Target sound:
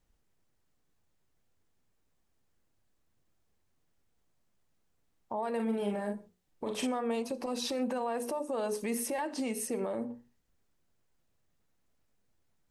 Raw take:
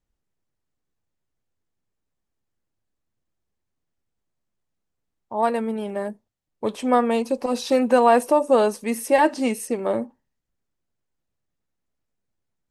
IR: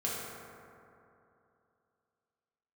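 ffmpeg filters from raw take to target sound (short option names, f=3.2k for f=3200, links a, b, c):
-filter_complex "[0:a]bandreject=f=60:t=h:w=6,bandreject=f=120:t=h:w=6,bandreject=f=180:t=h:w=6,bandreject=f=240:t=h:w=6,bandreject=f=300:t=h:w=6,bandreject=f=360:t=h:w=6,bandreject=f=420:t=h:w=6,bandreject=f=480:t=h:w=6,acompressor=threshold=-32dB:ratio=3,alimiter=level_in=7.5dB:limit=-24dB:level=0:latency=1:release=127,volume=-7.5dB,asettb=1/sr,asplit=3[a][b][c];[a]atrim=end=5.554[d];[b]atrim=start=5.55:end=6.87,asetpts=PTS-STARTPTS,afade=t=in:d=0.004:c=qsin,afade=t=out:st=1.316:d=0.004:c=qsin,asplit=2[e][f];[f]adelay=44,volume=-4.5dB[g];[e][g]amix=inputs=2:normalize=0,atrim=end_sample=58212[h];[c]atrim=start=6.866[i];[d][h]acrossfade=d=0.004:c1=hsin:c2=qsin[j];[j][i]acrossfade=d=0.004:c1=qsin:c2=hsin,asplit=2[k][l];[1:a]atrim=start_sample=2205,atrim=end_sample=6174[m];[l][m]afir=irnorm=-1:irlink=0,volume=-17.5dB[n];[k][n]amix=inputs=2:normalize=0,volume=4.5dB"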